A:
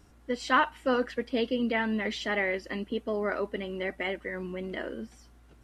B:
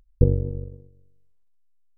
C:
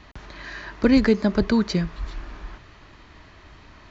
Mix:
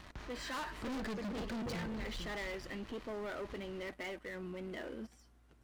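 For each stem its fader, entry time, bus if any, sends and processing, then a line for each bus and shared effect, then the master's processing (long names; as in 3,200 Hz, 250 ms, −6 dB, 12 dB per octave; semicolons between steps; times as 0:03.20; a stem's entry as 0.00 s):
−5.0 dB, 0.00 s, no send, no echo send, no processing
−5.0 dB, 1.45 s, no send, no echo send, high-pass filter 310 Hz 6 dB per octave
−7.0 dB, 0.00 s, no send, echo send −15.5 dB, no processing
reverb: not used
echo: repeating echo 450 ms, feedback 18%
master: leveller curve on the samples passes 2; soft clipping −29.5 dBFS, distortion −6 dB; brickwall limiter −38 dBFS, peak gain reduction 8.5 dB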